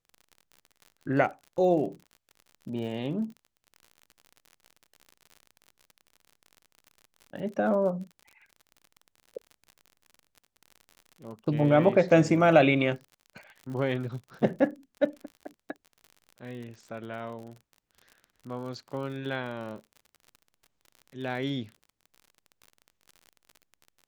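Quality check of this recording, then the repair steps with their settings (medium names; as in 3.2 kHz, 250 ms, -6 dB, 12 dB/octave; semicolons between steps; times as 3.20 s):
crackle 50 per s -39 dBFS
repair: de-click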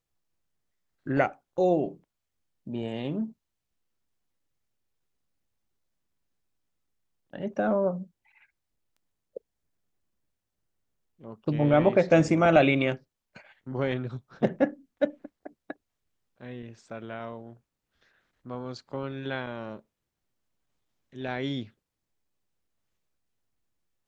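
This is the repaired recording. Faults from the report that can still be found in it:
nothing left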